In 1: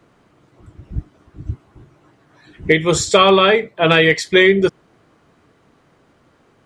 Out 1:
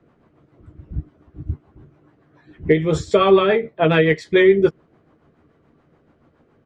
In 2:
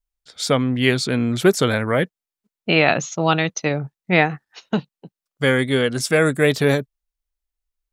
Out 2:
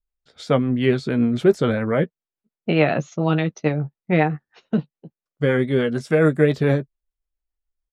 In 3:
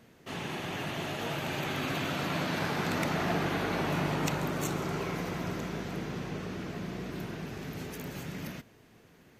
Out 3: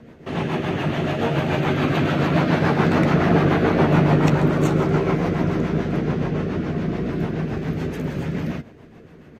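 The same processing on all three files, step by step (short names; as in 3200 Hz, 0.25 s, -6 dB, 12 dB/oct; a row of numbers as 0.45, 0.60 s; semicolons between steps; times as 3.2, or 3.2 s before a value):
LPF 1200 Hz 6 dB/oct; rotary speaker horn 7 Hz; doubler 13 ms -10 dB; normalise peaks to -3 dBFS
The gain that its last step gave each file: +0.5, +2.0, +16.0 dB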